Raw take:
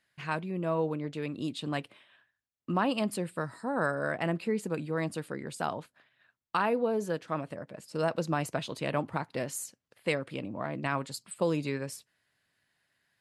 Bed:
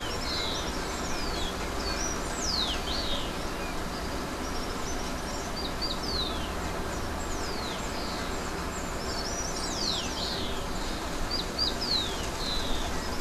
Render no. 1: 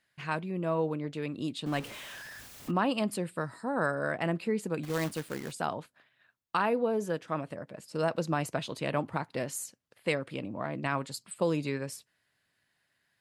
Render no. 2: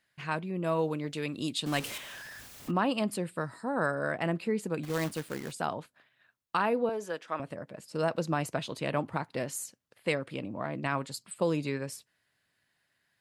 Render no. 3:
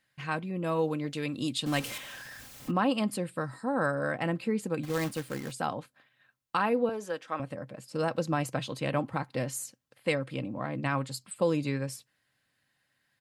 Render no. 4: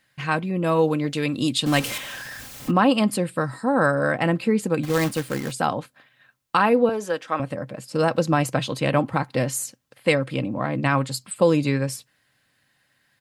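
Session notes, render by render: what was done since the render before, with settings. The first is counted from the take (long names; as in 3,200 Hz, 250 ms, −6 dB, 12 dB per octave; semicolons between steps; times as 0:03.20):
0:01.66–0:02.71: converter with a step at zero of −39.5 dBFS; 0:04.83–0:05.52: log-companded quantiser 4 bits; 0:06.83–0:07.44: notch filter 4,300 Hz
0:00.64–0:01.98: parametric band 12,000 Hz +10.5 dB 3 octaves; 0:06.89–0:07.40: meter weighting curve A
parametric band 130 Hz +12.5 dB 0.29 octaves; comb filter 3.8 ms, depth 37%
level +9 dB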